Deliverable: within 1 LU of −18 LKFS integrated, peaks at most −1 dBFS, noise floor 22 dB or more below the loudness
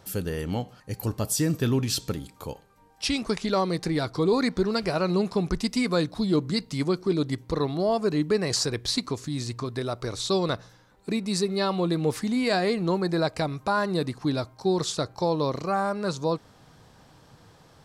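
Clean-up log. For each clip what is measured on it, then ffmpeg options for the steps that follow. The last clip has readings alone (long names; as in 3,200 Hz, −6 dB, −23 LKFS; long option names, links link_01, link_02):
integrated loudness −27.0 LKFS; sample peak −14.0 dBFS; target loudness −18.0 LKFS
→ -af "volume=9dB"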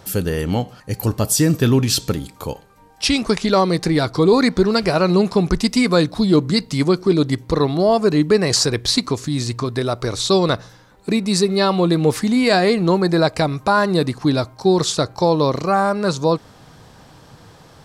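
integrated loudness −18.0 LKFS; sample peak −5.0 dBFS; background noise floor −47 dBFS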